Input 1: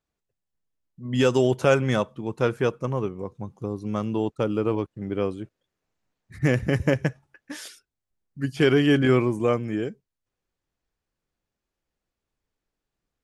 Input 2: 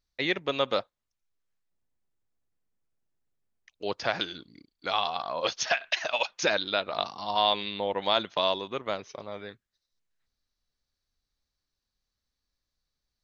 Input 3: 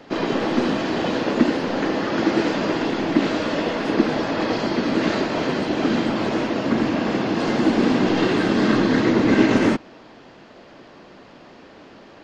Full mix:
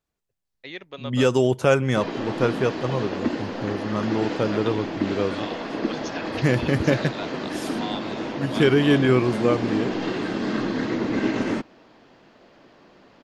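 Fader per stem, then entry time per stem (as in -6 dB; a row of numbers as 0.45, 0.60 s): +1.0, -9.5, -7.5 dB; 0.00, 0.45, 1.85 s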